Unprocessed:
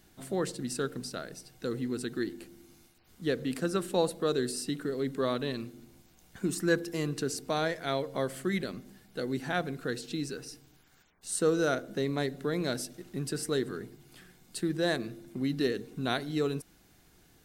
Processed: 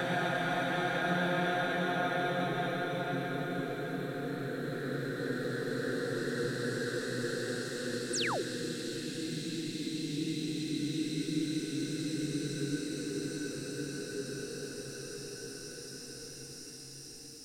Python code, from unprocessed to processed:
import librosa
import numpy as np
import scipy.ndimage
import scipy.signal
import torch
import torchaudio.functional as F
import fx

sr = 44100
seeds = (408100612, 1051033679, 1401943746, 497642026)

y = fx.paulstretch(x, sr, seeds[0], factor=16.0, window_s=0.5, from_s=9.49)
y = fx.spec_paint(y, sr, seeds[1], shape='fall', start_s=8.13, length_s=0.29, low_hz=310.0, high_hz=9500.0, level_db=-34.0)